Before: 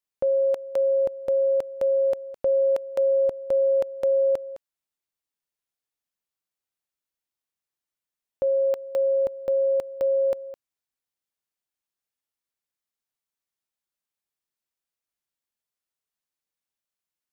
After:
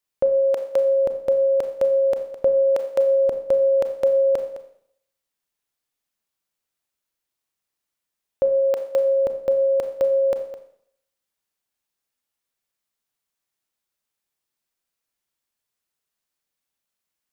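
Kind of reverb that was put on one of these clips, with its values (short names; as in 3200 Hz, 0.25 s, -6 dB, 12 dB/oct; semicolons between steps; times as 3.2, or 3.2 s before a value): Schroeder reverb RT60 0.65 s, combs from 28 ms, DRR 7.5 dB; gain +5.5 dB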